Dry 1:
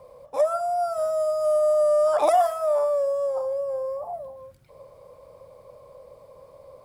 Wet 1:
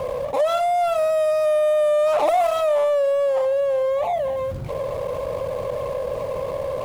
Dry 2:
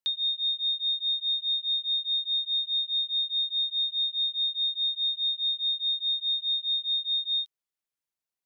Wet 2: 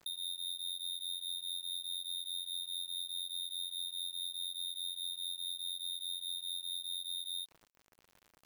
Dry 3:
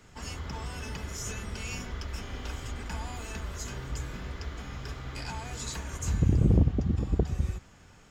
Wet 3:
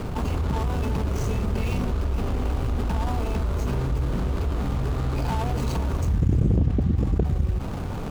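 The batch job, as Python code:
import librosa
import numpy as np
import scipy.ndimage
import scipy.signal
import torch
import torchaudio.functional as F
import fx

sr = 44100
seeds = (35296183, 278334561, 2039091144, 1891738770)

y = scipy.signal.medfilt(x, 25)
y = fx.env_flatten(y, sr, amount_pct=70)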